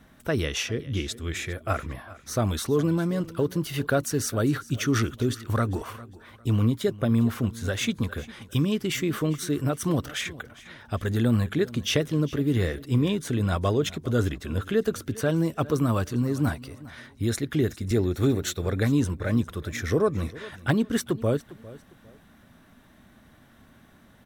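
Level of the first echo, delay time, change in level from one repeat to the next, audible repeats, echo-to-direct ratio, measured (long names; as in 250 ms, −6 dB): −19.0 dB, 403 ms, −10.5 dB, 2, −18.5 dB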